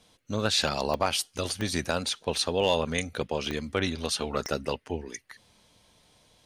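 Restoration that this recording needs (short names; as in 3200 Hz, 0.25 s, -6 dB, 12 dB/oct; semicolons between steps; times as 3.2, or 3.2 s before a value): clip repair -13 dBFS; de-click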